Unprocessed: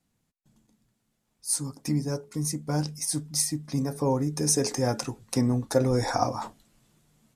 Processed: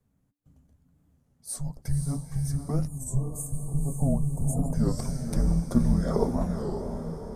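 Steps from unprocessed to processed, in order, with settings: high shelf 6300 Hz -6.5 dB; frequency shift -290 Hz; bell 3900 Hz -15 dB 2.8 oct; in parallel at -1 dB: compressor, threshold -38 dBFS, peak gain reduction 19 dB; on the sum: diffused feedback echo 0.522 s, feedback 50%, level -5.5 dB; spectral gain 2.89–4.76, 1200–6300 Hz -27 dB; record warp 33 1/3 rpm, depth 160 cents

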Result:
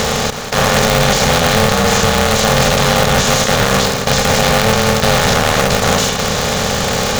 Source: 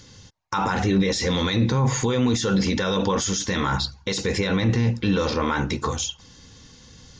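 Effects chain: per-bin compression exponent 0.2; maximiser +3 dB; polarity switched at an audio rate 330 Hz; gain -1 dB

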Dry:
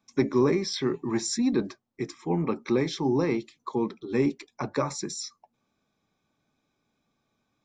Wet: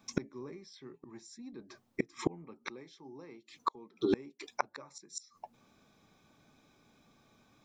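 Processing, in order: 2.7–5.18 low shelf 160 Hz -11 dB; flipped gate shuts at -26 dBFS, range -33 dB; gain +10 dB

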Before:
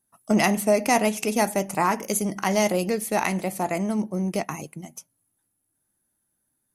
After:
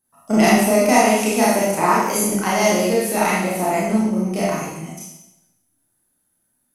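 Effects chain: Schroeder reverb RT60 0.87 s, combs from 25 ms, DRR -7.5 dB; gain -1.5 dB

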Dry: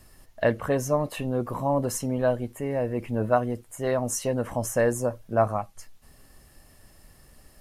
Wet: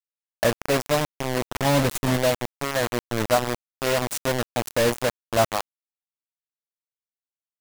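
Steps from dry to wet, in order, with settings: 1.55–2.18 low shelf 220 Hz +9 dB; bit-crush 4-bit; gain +1 dB

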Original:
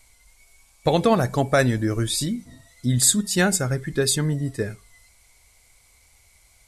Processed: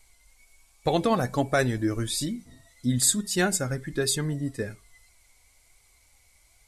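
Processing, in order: flange 1.2 Hz, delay 2.3 ms, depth 1.8 ms, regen +61%

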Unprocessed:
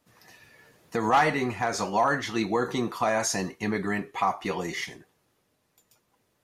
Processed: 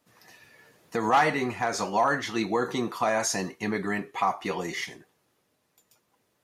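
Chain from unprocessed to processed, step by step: low shelf 72 Hz -11.5 dB

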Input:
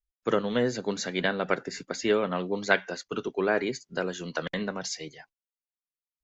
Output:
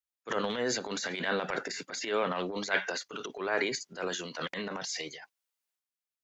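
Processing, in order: HPF 650 Hz 6 dB/oct; transient shaper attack -11 dB, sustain +9 dB

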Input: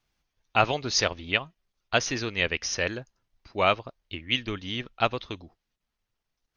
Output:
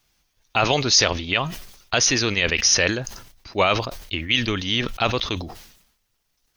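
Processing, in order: high shelf 4400 Hz +11 dB; maximiser +12 dB; sustainer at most 72 dB/s; gain -5 dB

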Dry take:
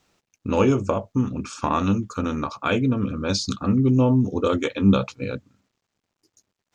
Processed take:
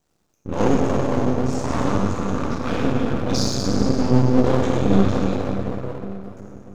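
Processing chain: bell 2400 Hz -11 dB 2.2 oct; plate-style reverb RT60 4 s, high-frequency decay 0.6×, DRR -7.5 dB; half-wave rectifier; dynamic EQ 5200 Hz, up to +6 dB, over -45 dBFS, Q 0.99; gain -1 dB

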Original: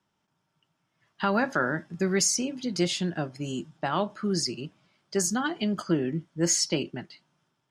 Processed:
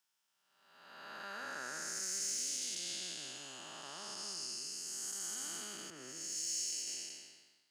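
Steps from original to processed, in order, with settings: time blur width 0.693 s; differentiator; in parallel at +1 dB: limiter -38.5 dBFS, peak gain reduction 11 dB; on the sum: soft clip -27 dBFS, distortion -27 dB; 5.9–6.87 three-band expander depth 100%

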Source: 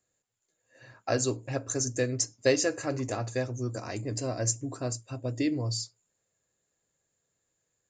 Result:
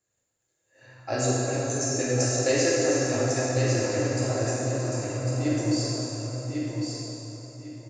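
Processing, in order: 4.43–5.45 compressor, threshold -32 dBFS, peak gain reduction 9 dB; feedback echo 1.1 s, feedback 23%, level -5 dB; plate-style reverb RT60 3.4 s, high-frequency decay 0.75×, DRR -7.5 dB; gain -4 dB

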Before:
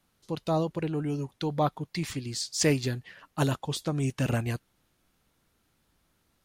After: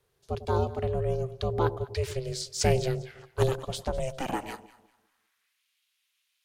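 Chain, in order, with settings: high-pass sweep 130 Hz -> 2700 Hz, 3.32–5.67; ring modulator 260 Hz; echo with dull and thin repeats by turns 0.1 s, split 820 Hz, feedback 53%, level -12.5 dB

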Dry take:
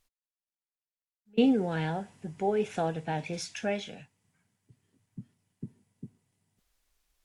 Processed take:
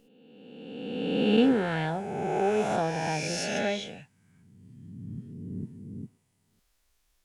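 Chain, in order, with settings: spectral swells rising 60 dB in 1.88 s

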